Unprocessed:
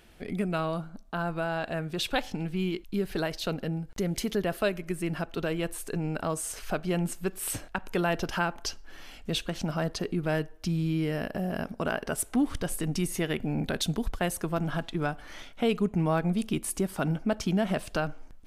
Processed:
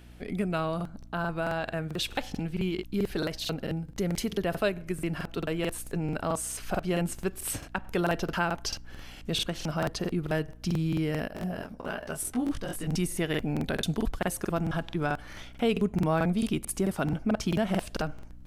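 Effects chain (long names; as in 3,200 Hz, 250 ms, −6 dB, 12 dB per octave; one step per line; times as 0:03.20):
mains hum 60 Hz, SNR 20 dB
regular buffer underruns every 0.22 s, samples 2,048, repeat, from 0:00.76
0:11.28–0:12.87: micro pitch shift up and down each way 26 cents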